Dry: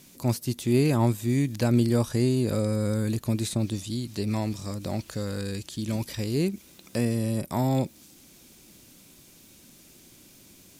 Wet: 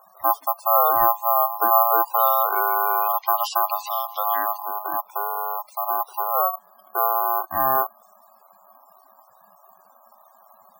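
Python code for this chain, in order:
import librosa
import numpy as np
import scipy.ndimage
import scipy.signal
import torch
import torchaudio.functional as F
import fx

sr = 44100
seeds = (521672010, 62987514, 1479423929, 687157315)

y = (np.kron(x[::3], np.eye(3)[0]) * 3)[:len(x)]
y = fx.low_shelf(y, sr, hz=350.0, db=10.5)
y = y * np.sin(2.0 * np.pi * 930.0 * np.arange(len(y)) / sr)
y = fx.weighting(y, sr, curve='D', at=(2.16, 4.57))
y = fx.spec_topn(y, sr, count=64)
y = F.gain(torch.from_numpy(y), -1.5).numpy()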